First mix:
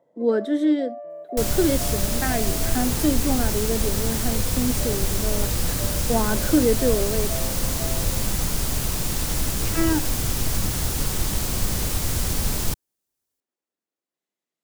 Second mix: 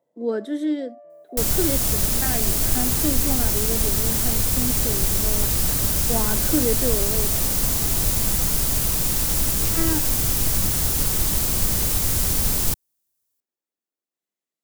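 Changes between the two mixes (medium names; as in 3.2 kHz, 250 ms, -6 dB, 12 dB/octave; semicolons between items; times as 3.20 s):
speech -4.0 dB; first sound -9.5 dB; master: add treble shelf 8.1 kHz +9 dB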